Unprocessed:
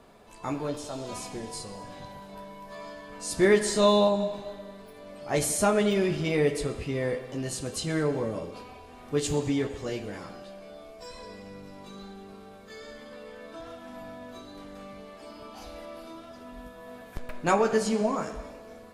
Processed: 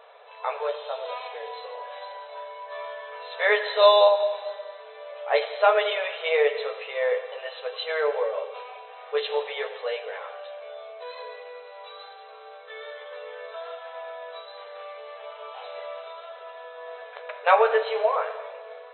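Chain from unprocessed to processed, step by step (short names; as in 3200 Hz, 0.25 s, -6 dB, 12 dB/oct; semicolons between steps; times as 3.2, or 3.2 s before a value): brick-wall FIR band-pass 430–4100 Hz; gain +6.5 dB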